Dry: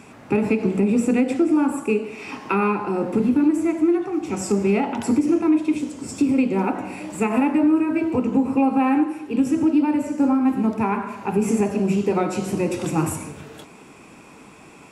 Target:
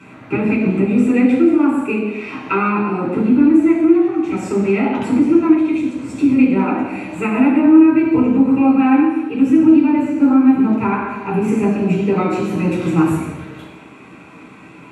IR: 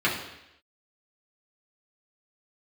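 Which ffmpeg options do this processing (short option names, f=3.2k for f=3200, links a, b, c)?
-filter_complex "[1:a]atrim=start_sample=2205,asetrate=39690,aresample=44100[a];[0:a][a]afir=irnorm=-1:irlink=0,volume=-10dB"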